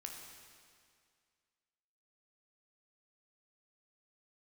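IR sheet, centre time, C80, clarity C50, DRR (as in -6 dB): 74 ms, 4.0 dB, 2.5 dB, 0.5 dB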